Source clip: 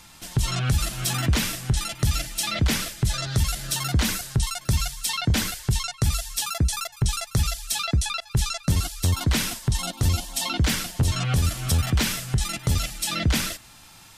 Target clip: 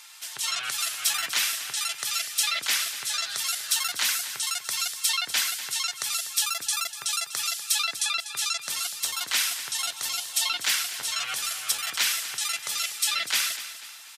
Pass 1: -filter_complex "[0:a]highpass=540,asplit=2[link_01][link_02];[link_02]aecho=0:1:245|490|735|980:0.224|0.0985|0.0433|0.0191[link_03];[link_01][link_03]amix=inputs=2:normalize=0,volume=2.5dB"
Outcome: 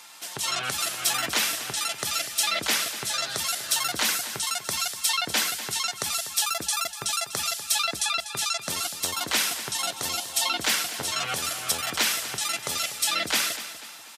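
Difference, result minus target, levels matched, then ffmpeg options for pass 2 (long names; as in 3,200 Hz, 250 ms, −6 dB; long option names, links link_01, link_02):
500 Hz band +12.5 dB
-filter_complex "[0:a]highpass=1400,asplit=2[link_01][link_02];[link_02]aecho=0:1:245|490|735|980:0.224|0.0985|0.0433|0.0191[link_03];[link_01][link_03]amix=inputs=2:normalize=0,volume=2.5dB"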